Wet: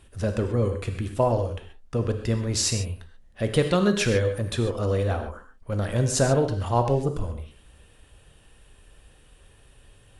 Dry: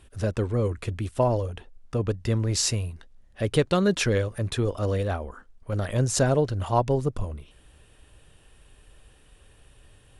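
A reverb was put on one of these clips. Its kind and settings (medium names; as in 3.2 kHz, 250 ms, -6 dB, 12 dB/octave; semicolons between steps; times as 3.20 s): gated-style reverb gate 160 ms flat, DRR 5.5 dB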